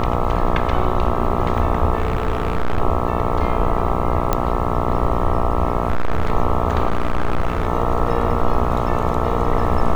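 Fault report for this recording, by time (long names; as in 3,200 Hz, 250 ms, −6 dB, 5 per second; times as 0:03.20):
mains buzz 60 Hz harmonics 22 −22 dBFS
0:01.98–0:02.81: clipping −14 dBFS
0:04.33: click −4 dBFS
0:05.88–0:06.32: clipping −13 dBFS
0:06.88–0:07.67: clipping −13.5 dBFS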